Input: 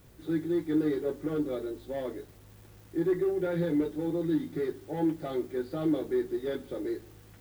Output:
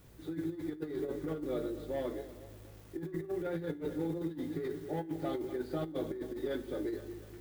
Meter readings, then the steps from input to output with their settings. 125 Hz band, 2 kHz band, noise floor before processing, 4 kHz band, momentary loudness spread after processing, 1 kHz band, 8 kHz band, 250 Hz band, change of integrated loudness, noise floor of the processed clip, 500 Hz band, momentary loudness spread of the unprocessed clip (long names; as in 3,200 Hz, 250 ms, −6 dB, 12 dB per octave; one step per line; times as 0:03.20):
−4.5 dB, −4.5 dB, −54 dBFS, −3.0 dB, 7 LU, −3.0 dB, can't be measured, −8.0 dB, −7.0 dB, −52 dBFS, −6.0 dB, 8 LU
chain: feedback delay that plays each chunk backwards 123 ms, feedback 66%, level −12.5 dB
compressor whose output falls as the input rises −31 dBFS, ratio −0.5
tuned comb filter 54 Hz, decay 0.42 s, harmonics all, mix 40%
level −1.5 dB